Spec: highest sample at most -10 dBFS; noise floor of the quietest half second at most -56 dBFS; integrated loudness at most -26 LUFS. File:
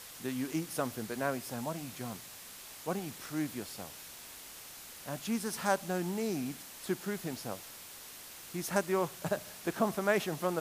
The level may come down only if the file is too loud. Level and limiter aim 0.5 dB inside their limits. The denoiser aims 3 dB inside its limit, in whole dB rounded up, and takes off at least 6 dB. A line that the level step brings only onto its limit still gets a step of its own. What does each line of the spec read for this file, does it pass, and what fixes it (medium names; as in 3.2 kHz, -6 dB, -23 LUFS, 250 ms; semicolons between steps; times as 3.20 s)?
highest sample -14.0 dBFS: pass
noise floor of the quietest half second -49 dBFS: fail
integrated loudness -36.5 LUFS: pass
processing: noise reduction 10 dB, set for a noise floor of -49 dBFS